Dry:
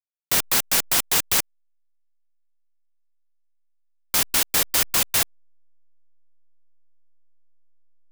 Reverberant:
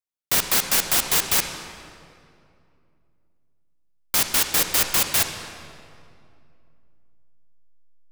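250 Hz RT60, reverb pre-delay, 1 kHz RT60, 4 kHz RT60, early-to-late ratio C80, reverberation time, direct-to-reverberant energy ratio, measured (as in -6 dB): 3.0 s, 39 ms, 2.3 s, 1.7 s, 7.5 dB, 2.5 s, 6.0 dB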